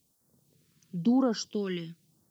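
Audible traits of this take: a quantiser's noise floor 12-bit, dither triangular; phasing stages 2, 0.97 Hz, lowest notch 630–2600 Hz

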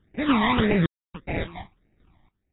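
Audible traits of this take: random-step tremolo 3.5 Hz, depth 100%; aliases and images of a low sample rate 1500 Hz, jitter 20%; phasing stages 12, 1.7 Hz, lowest notch 450–1100 Hz; AAC

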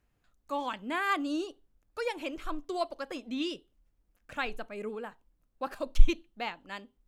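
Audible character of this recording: noise floor -75 dBFS; spectral tilt -3.5 dB/oct

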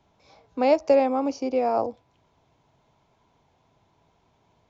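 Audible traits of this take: noise floor -67 dBFS; spectral tilt -0.5 dB/oct

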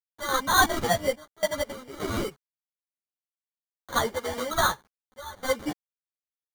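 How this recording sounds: aliases and images of a low sample rate 2600 Hz, jitter 0%; random-step tremolo, depth 100%; a quantiser's noise floor 10-bit, dither none; a shimmering, thickened sound

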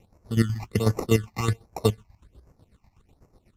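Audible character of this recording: chopped level 8.1 Hz, depth 65%, duty 40%; aliases and images of a low sample rate 1600 Hz, jitter 0%; phasing stages 8, 1.3 Hz, lowest notch 420–3500 Hz; Vorbis

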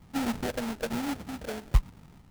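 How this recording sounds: phasing stages 6, 1.1 Hz, lowest notch 150–1100 Hz; aliases and images of a low sample rate 1100 Hz, jitter 20%

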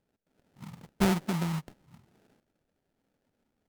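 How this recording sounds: phasing stages 2, 1 Hz, lowest notch 410–1000 Hz; aliases and images of a low sample rate 1100 Hz, jitter 20%; Vorbis

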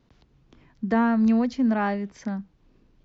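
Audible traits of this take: noise floor -63 dBFS; spectral tilt -6.5 dB/oct

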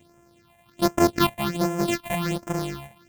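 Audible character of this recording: a buzz of ramps at a fixed pitch in blocks of 128 samples; phasing stages 6, 1.3 Hz, lowest notch 340–4100 Hz

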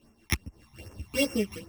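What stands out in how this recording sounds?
a buzz of ramps at a fixed pitch in blocks of 16 samples; phasing stages 12, 2.5 Hz, lowest notch 460–4000 Hz; tremolo triangle 5.3 Hz, depth 65%; a shimmering, thickened sound

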